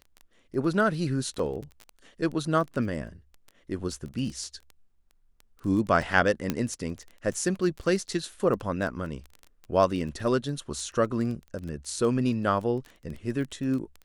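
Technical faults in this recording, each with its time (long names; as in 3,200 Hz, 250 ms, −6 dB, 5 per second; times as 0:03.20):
surface crackle 13 per second −33 dBFS
0:01.39: drop-out 4.1 ms
0:06.50: click −12 dBFS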